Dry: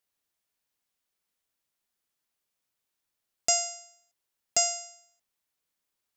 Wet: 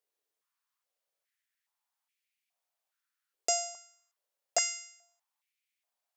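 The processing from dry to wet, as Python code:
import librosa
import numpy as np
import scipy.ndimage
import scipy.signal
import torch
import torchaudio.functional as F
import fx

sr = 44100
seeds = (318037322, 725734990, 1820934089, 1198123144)

y = fx.filter_held_highpass(x, sr, hz=2.4, low_hz=430.0, high_hz=2300.0)
y = F.gain(torch.from_numpy(y), -5.5).numpy()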